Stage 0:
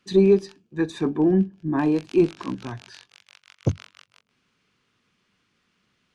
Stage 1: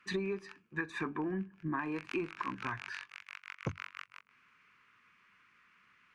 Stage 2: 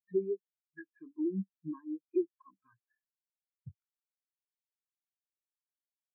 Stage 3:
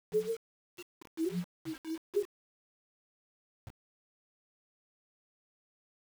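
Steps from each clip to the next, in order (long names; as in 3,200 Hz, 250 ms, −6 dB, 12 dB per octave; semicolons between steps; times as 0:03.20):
flat-topped bell 1,600 Hz +15.5 dB; downward compressor 12 to 1, threshold −25 dBFS, peak gain reduction 14 dB; level −7.5 dB
every bin expanded away from the loudest bin 4 to 1
partials spread apart or drawn together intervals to 126%; bit-depth reduction 8 bits, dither none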